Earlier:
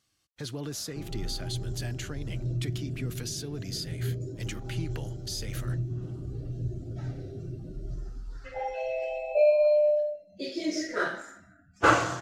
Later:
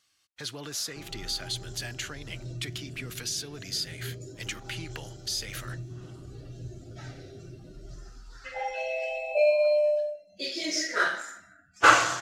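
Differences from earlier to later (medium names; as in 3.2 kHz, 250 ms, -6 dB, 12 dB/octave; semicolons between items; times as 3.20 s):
speech: add treble shelf 4.9 kHz -6.5 dB; master: add tilt shelf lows -8.5 dB, about 690 Hz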